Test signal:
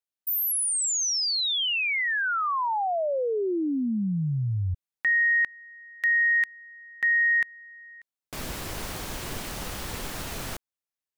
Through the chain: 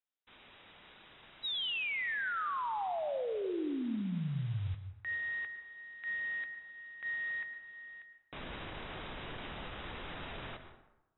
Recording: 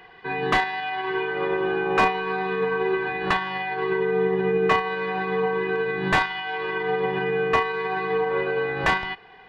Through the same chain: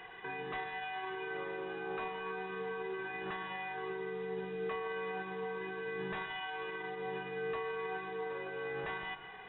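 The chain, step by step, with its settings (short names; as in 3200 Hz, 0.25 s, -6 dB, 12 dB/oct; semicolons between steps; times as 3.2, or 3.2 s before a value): low shelf 360 Hz -4 dB; compressor, threshold -33 dBFS; limiter -31.5 dBFS; modulation noise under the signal 15 dB; brick-wall FIR low-pass 3900 Hz; plate-style reverb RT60 0.96 s, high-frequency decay 0.55×, pre-delay 95 ms, DRR 9 dB; gain -1.5 dB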